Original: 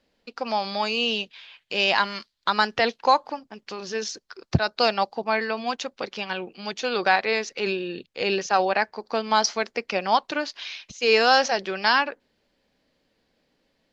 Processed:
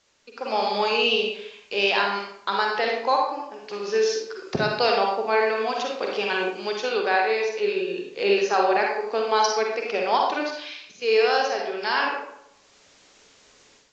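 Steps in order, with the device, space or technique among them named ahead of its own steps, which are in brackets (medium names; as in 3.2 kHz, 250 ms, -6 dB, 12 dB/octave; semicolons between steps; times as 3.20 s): filmed off a television (band-pass 270–6400 Hz; peaking EQ 420 Hz +10 dB 0.25 oct; reverberation RT60 0.75 s, pre-delay 41 ms, DRR -0.5 dB; white noise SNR 34 dB; level rider gain up to 11.5 dB; trim -7.5 dB; AAC 48 kbps 16 kHz)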